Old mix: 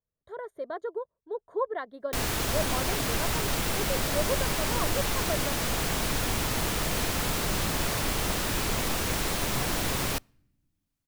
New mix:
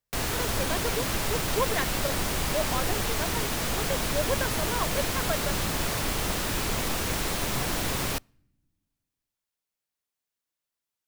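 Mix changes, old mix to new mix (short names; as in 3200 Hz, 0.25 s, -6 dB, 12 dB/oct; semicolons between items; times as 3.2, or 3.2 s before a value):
speech: remove running mean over 17 samples; background: entry -2.00 s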